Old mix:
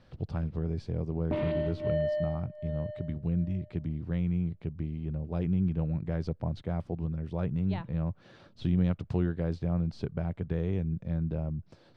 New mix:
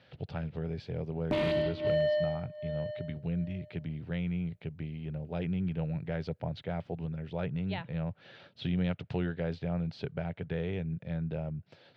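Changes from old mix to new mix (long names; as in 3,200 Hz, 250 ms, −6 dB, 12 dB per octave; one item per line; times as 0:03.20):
speech: add loudspeaker in its box 130–3,200 Hz, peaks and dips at 210 Hz −7 dB, 320 Hz −8 dB, 1,100 Hz −9 dB
master: remove head-to-tape spacing loss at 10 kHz 32 dB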